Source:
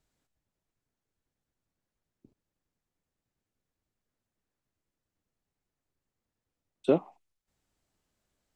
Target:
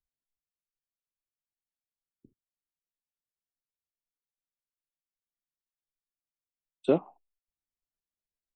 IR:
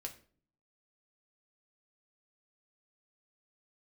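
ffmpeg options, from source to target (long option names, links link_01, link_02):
-af "afftdn=noise_reduction=24:noise_floor=-61"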